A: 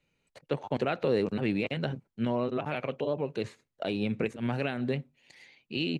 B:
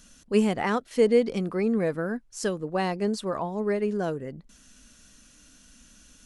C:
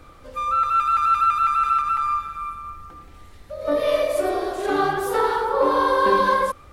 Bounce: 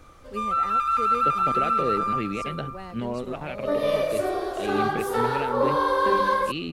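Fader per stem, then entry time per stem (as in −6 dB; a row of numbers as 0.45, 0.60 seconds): −1.0, −13.5, −3.5 decibels; 0.75, 0.00, 0.00 seconds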